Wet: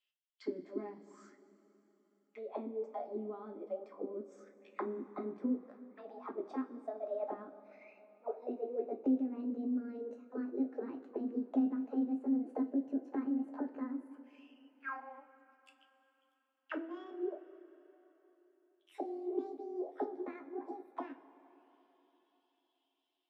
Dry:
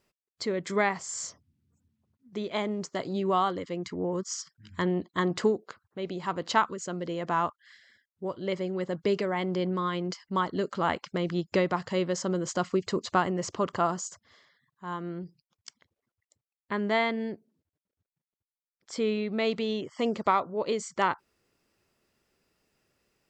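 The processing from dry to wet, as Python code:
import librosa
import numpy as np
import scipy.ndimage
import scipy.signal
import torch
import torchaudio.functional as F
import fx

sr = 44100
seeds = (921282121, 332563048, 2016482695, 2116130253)

y = fx.pitch_glide(x, sr, semitones=11.5, runs='starting unshifted')
y = fx.high_shelf(y, sr, hz=3800.0, db=-6.0)
y = fx.auto_wah(y, sr, base_hz=270.0, top_hz=3200.0, q=9.3, full_db=-27.5, direction='down')
y = fx.low_shelf(y, sr, hz=140.0, db=-11.5)
y = fx.rev_double_slope(y, sr, seeds[0], early_s=0.22, late_s=3.8, knee_db=-21, drr_db=2.0)
y = y * 10.0 ** (3.5 / 20.0)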